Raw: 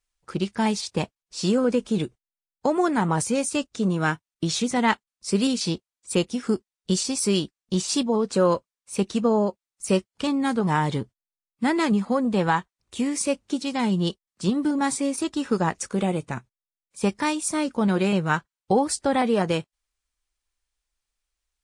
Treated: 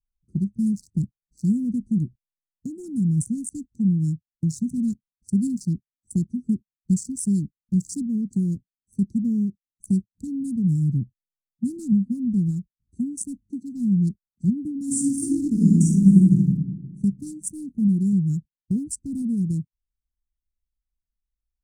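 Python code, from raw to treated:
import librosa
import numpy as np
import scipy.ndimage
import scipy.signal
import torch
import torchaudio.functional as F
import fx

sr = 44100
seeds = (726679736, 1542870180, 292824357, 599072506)

y = fx.reverb_throw(x, sr, start_s=14.84, length_s=1.51, rt60_s=1.7, drr_db=-8.0)
y = fx.wiener(y, sr, points=25)
y = scipy.signal.sosfilt(scipy.signal.cheby2(4, 50, [550.0, 3300.0], 'bandstop', fs=sr, output='sos'), y)
y = fx.dynamic_eq(y, sr, hz=130.0, q=0.98, threshold_db=-40.0, ratio=4.0, max_db=6)
y = y * 10.0 ** (1.0 / 20.0)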